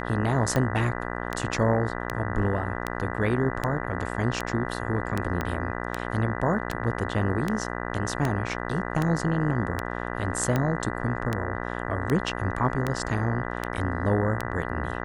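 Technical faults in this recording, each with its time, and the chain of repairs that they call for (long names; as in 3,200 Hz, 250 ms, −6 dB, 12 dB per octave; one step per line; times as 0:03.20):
mains buzz 60 Hz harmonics 33 −32 dBFS
scratch tick 78 rpm −12 dBFS
0:05.41: click −14 dBFS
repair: click removal
hum removal 60 Hz, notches 33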